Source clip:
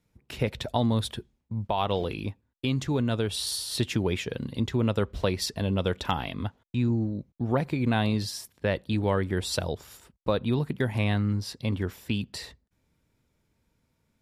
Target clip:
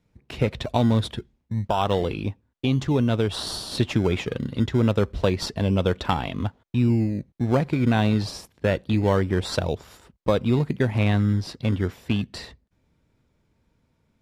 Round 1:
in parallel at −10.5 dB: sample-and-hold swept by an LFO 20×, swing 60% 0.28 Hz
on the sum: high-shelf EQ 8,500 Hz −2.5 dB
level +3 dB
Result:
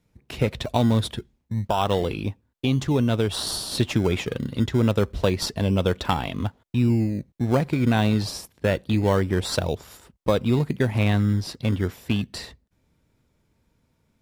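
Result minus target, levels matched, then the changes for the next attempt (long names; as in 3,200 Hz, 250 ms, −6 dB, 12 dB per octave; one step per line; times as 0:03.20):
8,000 Hz band +4.5 dB
change: high-shelf EQ 8,500 Hz −14 dB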